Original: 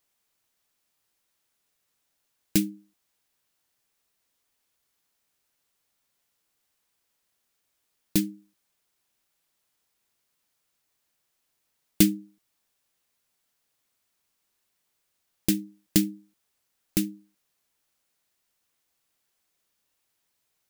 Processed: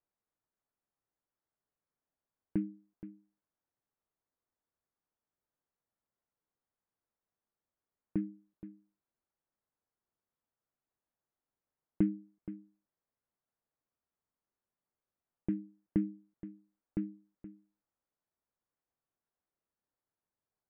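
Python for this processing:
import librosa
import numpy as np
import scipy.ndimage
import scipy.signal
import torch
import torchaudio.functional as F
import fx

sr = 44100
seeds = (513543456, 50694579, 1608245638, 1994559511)

p1 = scipy.signal.sosfilt(scipy.signal.bessel(8, 1100.0, 'lowpass', norm='mag', fs=sr, output='sos'), x)
p2 = p1 + fx.echo_single(p1, sr, ms=473, db=-14.5, dry=0)
y = p2 * 10.0 ** (-8.5 / 20.0)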